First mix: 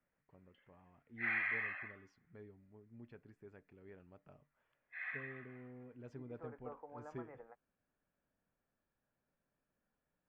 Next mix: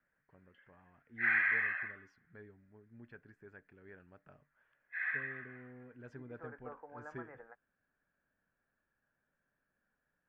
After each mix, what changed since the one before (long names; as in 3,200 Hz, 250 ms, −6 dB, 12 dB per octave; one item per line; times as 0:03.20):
master: add parametric band 1,600 Hz +12.5 dB 0.49 octaves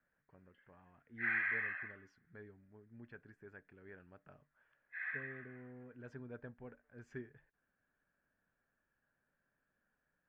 second voice: muted
background −5.5 dB